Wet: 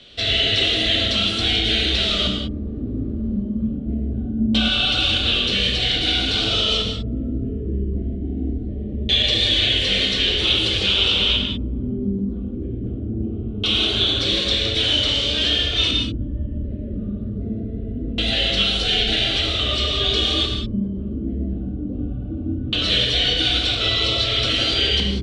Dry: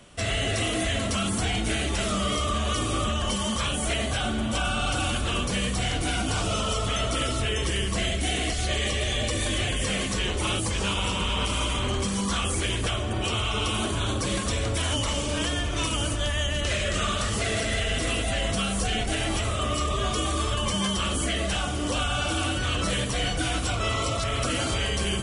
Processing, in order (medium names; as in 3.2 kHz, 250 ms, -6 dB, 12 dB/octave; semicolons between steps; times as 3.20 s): 2.33–3.42 s: one-bit comparator; fifteen-band graphic EQ 160 Hz -5 dB, 400 Hz +4 dB, 1 kHz -11 dB, 4 kHz +10 dB; LFO low-pass square 0.22 Hz 240–3700 Hz; gated-style reverb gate 220 ms flat, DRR 1.5 dB